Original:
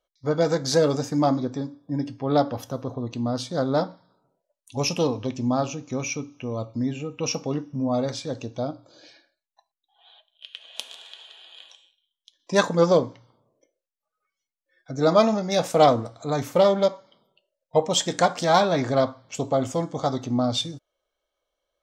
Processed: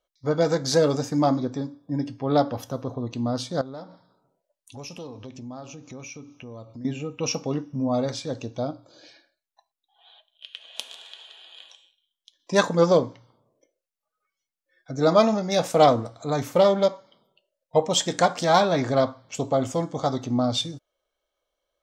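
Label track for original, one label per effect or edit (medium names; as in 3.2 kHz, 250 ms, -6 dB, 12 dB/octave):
3.610000	6.850000	compression 3:1, threshold -40 dBFS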